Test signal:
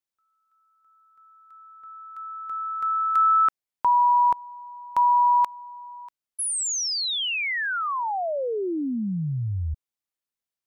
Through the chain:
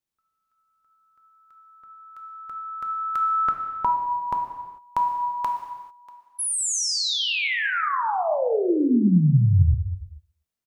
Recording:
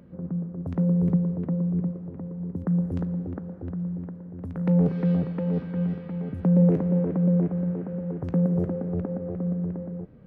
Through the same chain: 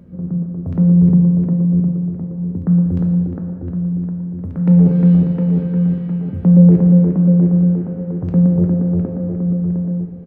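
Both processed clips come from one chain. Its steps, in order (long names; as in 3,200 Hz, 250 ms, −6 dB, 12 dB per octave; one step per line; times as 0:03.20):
low-shelf EQ 290 Hz +10.5 dB
repeating echo 122 ms, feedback 33%, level −24 dB
reverb whose tail is shaped and stops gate 470 ms falling, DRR 3 dB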